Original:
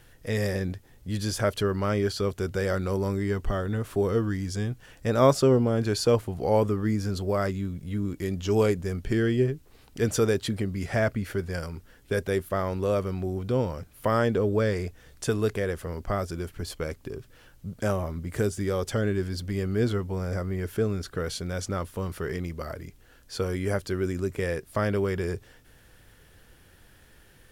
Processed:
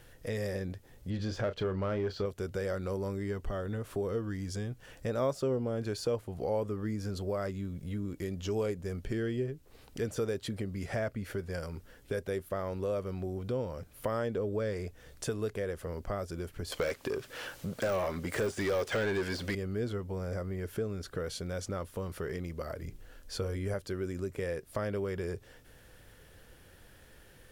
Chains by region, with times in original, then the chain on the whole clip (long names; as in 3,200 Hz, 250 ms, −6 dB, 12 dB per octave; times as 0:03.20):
0:01.10–0:02.26: high-frequency loss of the air 170 metres + leveller curve on the samples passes 1 + double-tracking delay 32 ms −11.5 dB
0:16.72–0:19.55: dynamic equaliser 2,200 Hz, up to +4 dB, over −46 dBFS, Q 0.83 + mid-hump overdrive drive 24 dB, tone 7,200 Hz, clips at −12 dBFS
0:22.82–0:23.74: low-shelf EQ 95 Hz +11 dB + mains-hum notches 60/120/180/240/300/360/420/480 Hz
whole clip: de-essing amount 60%; parametric band 530 Hz +4.5 dB 0.61 octaves; downward compressor 2 to 1, threshold −36 dBFS; level −1.5 dB